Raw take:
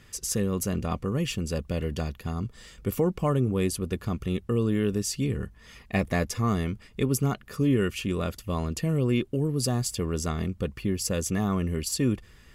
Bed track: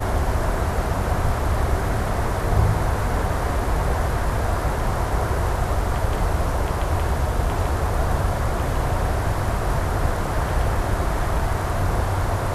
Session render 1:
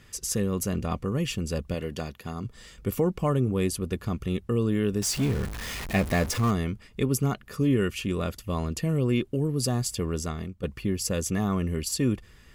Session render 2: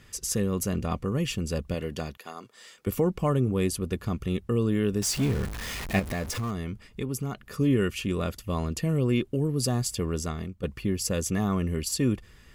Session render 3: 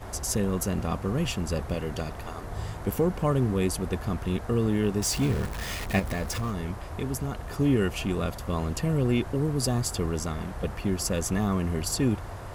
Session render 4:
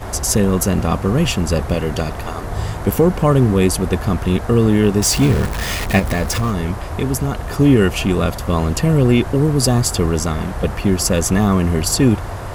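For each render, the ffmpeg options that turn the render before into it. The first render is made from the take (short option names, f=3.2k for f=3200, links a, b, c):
-filter_complex "[0:a]asettb=1/sr,asplit=3[a][b][c];[a]atrim=end=1.744[d];[b]atrim=start=1.74:end=2.45,asetpts=PTS-STARTPTS,afade=t=in:d=0.004:c=qsin,afade=t=out:st=0.706:d=0.004:c=qsin,highpass=f=190:p=1[e];[c]atrim=start=2.446[f];[d][e]acrossfade=d=0.004:c1=hsin:c2=qsin[g];[g][f]acrossfade=d=0.004:c1=qsin:c2=hsin,asettb=1/sr,asplit=3[h][i][j];[h]atrim=end=5.024[k];[i]atrim=start=5.02:end=6.51,asetpts=PTS-STARTPTS,afade=t=in:d=0.004:c=qsin,afade=t=out:st=1.486:d=0.004:c=qsin,aeval=exprs='val(0)+0.5*0.0316*sgn(val(0))':c=same[l];[j]atrim=start=6.506[m];[k][l]acrossfade=d=0.004:c1=hsin:c2=qsin[n];[n][m]acrossfade=d=0.004:c1=qsin:c2=hsin,asplit=2[o][p];[o]atrim=end=10.63,asetpts=PTS-STARTPTS,afade=t=out:st=10.1:d=0.53:silence=0.266073[q];[p]atrim=start=10.63,asetpts=PTS-STARTPTS,afade=t=in:d=0.004:c=hsin:silence=0.266073[r];[q][r]concat=n=2:v=0:a=1"
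-filter_complex "[0:a]asettb=1/sr,asplit=3[a][b][c];[a]atrim=end=2.174[d];[b]atrim=start=2.17:end=2.87,asetpts=PTS-STARTPTS,afade=t=in:d=0.004:c=qsin,afade=t=out:st=0.696:d=0.004:c=qsin,highpass=460[e];[c]atrim=start=2.866[f];[d][e]acrossfade=d=0.004:c1=hsin:c2=qsin[g];[g][f]acrossfade=d=0.004:c1=qsin:c2=hsin,asettb=1/sr,asplit=3[h][i][j];[h]atrim=end=5.994[k];[i]atrim=start=5.99:end=7.54,asetpts=PTS-STARTPTS,afade=t=in:d=0.004:c=qsin,afade=t=out:st=1.546:d=0.004:c=qsin,acompressor=threshold=-31dB:ratio=2:attack=3.2:release=140:knee=1:detection=peak[l];[j]atrim=start=7.536[m];[k][l]acrossfade=d=0.004:c1=hsin:c2=qsin[n];[n][m]acrossfade=d=0.004:c1=qsin:c2=hsin"
-filter_complex "[1:a]volume=-16dB[a];[0:a][a]amix=inputs=2:normalize=0"
-af "volume=11.5dB,alimiter=limit=-2dB:level=0:latency=1"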